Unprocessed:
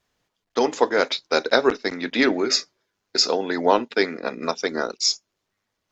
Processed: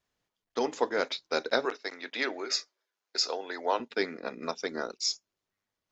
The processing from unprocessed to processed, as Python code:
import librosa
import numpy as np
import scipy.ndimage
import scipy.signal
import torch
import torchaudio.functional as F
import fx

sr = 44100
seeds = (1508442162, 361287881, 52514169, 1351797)

y = fx.highpass(x, sr, hz=490.0, slope=12, at=(1.65, 3.8))
y = y * librosa.db_to_amplitude(-9.0)